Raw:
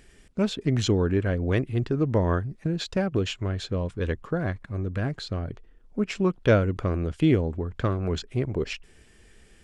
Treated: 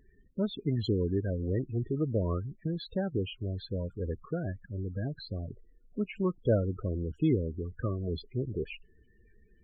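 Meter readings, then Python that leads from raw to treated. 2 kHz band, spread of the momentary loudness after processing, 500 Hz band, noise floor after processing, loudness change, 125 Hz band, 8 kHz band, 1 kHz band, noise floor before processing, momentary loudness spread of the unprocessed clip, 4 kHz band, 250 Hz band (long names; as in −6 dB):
−14.0 dB, 10 LU, −6.5 dB, −62 dBFS, −6.5 dB, −6.0 dB, below −30 dB, −12.0 dB, −55 dBFS, 10 LU, −9.5 dB, −6.0 dB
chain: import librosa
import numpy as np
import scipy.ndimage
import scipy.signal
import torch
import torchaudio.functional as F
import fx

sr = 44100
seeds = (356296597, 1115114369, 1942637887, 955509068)

y = fx.spec_topn(x, sr, count=16)
y = y * librosa.db_to_amplitude(-6.0)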